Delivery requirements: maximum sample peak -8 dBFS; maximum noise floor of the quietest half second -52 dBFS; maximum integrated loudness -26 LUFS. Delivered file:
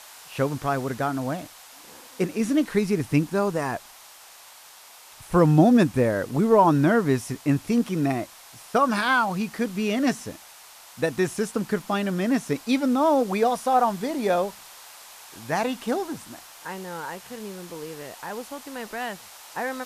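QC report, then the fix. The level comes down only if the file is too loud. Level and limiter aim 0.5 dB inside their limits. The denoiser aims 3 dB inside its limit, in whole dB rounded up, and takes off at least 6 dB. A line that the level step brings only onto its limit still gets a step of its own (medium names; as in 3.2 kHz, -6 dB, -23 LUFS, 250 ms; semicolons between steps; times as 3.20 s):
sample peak -4.5 dBFS: fail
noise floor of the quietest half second -48 dBFS: fail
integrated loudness -24.0 LUFS: fail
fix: noise reduction 6 dB, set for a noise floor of -48 dBFS; trim -2.5 dB; peak limiter -8.5 dBFS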